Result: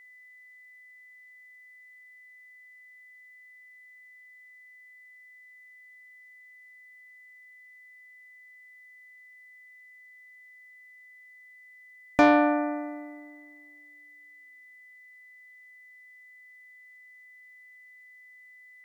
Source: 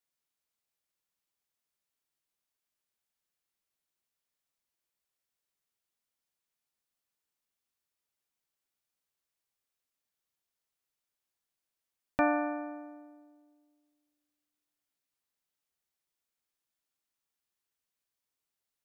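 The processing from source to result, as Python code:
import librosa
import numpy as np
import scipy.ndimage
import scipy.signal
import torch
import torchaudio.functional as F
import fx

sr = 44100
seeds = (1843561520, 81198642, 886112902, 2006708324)

y = x + 10.0 ** (-61.0 / 20.0) * np.sin(2.0 * np.pi * 2000.0 * np.arange(len(x)) / sr)
y = fx.cheby_harmonics(y, sr, harmonics=(5,), levels_db=(-19,), full_scale_db=-14.5)
y = y * 10.0 ** (7.0 / 20.0)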